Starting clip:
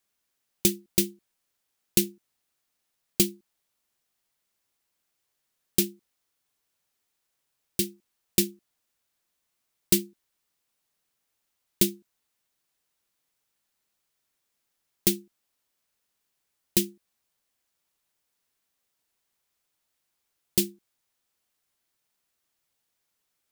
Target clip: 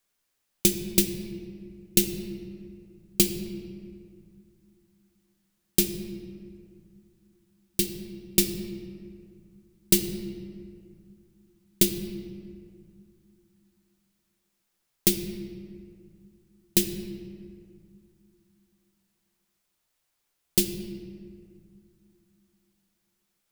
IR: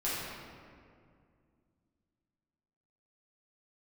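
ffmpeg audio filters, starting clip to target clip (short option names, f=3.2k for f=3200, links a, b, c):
-filter_complex "[0:a]asplit=2[a][b];[1:a]atrim=start_sample=2205,lowshelf=f=100:g=9[c];[b][c]afir=irnorm=-1:irlink=0,volume=-12.5dB[d];[a][d]amix=inputs=2:normalize=0"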